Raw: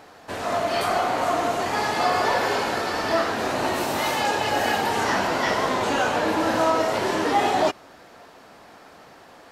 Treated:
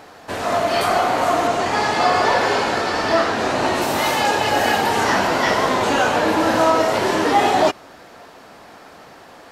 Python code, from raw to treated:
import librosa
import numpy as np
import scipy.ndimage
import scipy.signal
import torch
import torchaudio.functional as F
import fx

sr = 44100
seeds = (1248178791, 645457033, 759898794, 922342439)

y = fx.lowpass(x, sr, hz=8600.0, slope=12, at=(1.47, 3.82))
y = y * 10.0 ** (5.0 / 20.0)